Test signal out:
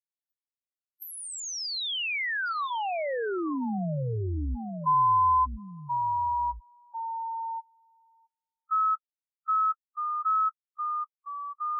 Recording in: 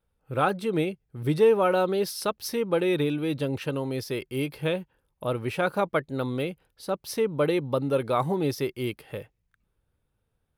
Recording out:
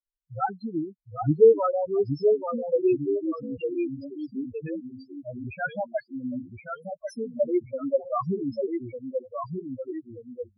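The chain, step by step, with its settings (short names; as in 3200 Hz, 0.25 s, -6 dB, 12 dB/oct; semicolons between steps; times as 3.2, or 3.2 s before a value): per-bin expansion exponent 3; echoes that change speed 0.742 s, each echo -1 st, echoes 2, each echo -6 dB; loudest bins only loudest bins 4; treble ducked by the level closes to 2300 Hz, closed at -27 dBFS; gain +6 dB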